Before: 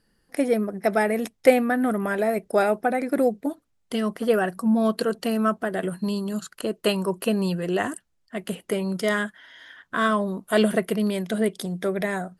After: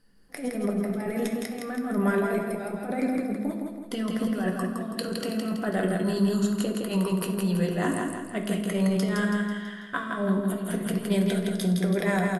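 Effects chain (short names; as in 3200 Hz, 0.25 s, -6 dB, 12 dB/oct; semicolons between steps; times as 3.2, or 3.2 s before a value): negative-ratio compressor -26 dBFS, ratio -0.5; feedback echo 0.164 s, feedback 47%, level -3.5 dB; on a send at -4 dB: reverb RT60 0.60 s, pre-delay 4 ms; on the sum: gain -4.5 dB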